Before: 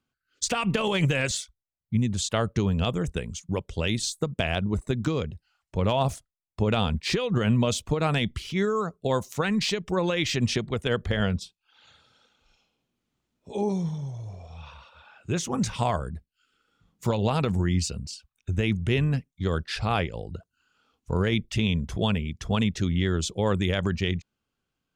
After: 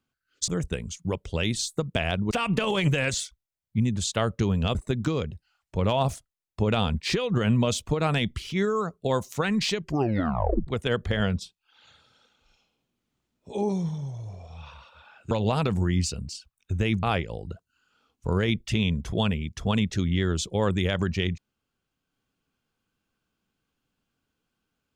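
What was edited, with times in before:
2.92–4.75 move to 0.48
9.78 tape stop 0.89 s
15.31–17.09 cut
18.81–19.87 cut

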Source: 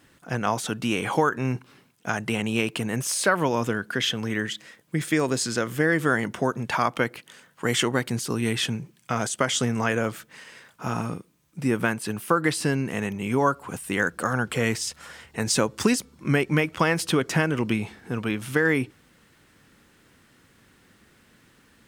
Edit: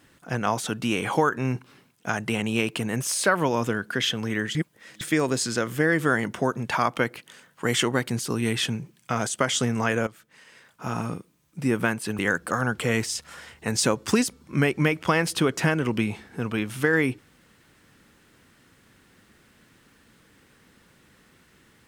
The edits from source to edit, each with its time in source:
4.55–5.01 reverse
10.07–11.1 fade in, from -16 dB
12.19–13.91 cut

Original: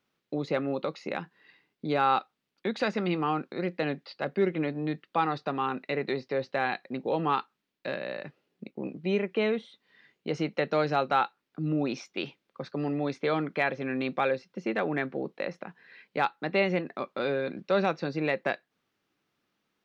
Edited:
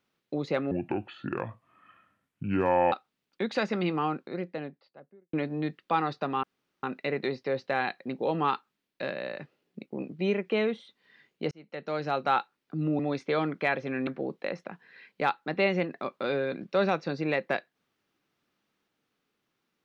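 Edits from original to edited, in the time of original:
0.71–2.17 speed 66%
3.1–4.58 studio fade out
5.68 insert room tone 0.40 s
10.36–11.21 fade in
11.84–12.94 cut
14.02–15.03 cut

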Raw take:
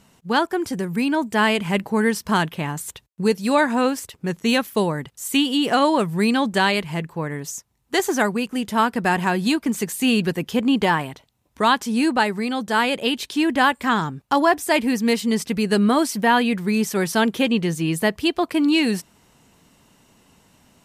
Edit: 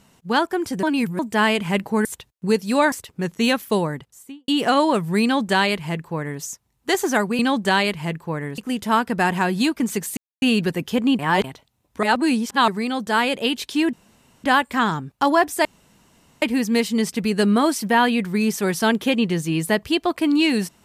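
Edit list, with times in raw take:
0.83–1.19 reverse
2.05–2.81 cut
3.68–3.97 cut
4.87–5.53 studio fade out
6.28–7.47 copy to 8.44
10.03 insert silence 0.25 s
10.8–11.05 reverse
11.64–12.29 reverse
13.54 insert room tone 0.51 s
14.75 insert room tone 0.77 s

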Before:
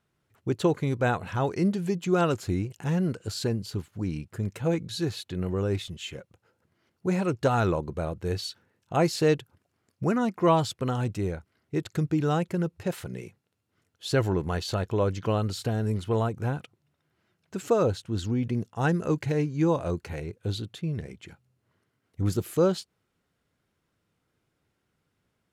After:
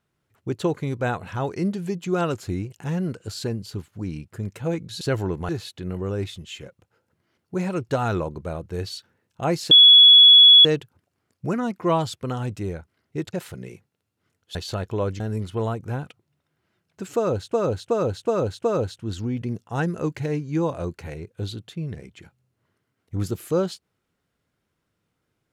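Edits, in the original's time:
9.23 add tone 3380 Hz -7 dBFS 0.94 s
11.91–12.85 cut
14.07–14.55 move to 5.01
15.2–15.74 cut
17.7–18.07 loop, 5 plays

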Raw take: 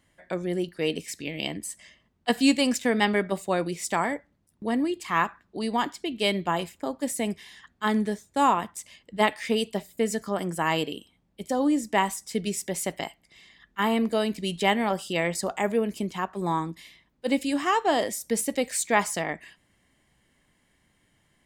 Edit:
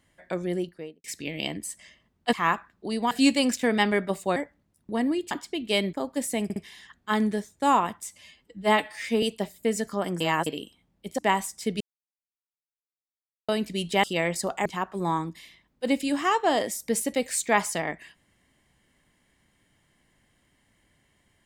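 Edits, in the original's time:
0.48–1.04 studio fade out
3.58–4.09 cut
5.04–5.82 move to 2.33
6.44–6.79 cut
7.3 stutter 0.06 s, 3 plays
8.78–9.57 stretch 1.5×
10.55–10.81 reverse
11.53–11.87 cut
12.49–14.17 mute
14.72–15.03 cut
15.65–16.07 cut

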